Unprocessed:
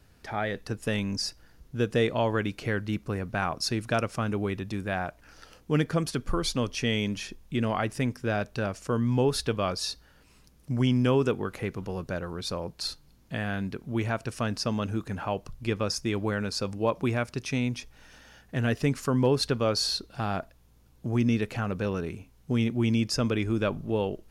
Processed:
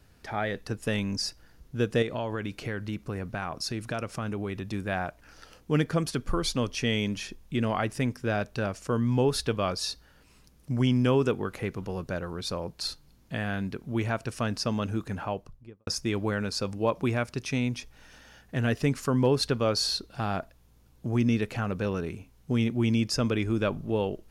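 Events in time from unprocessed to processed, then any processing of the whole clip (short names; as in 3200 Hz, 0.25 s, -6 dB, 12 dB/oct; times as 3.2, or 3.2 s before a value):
2.02–4.66 compressor 3:1, threshold -29 dBFS
15.11–15.87 studio fade out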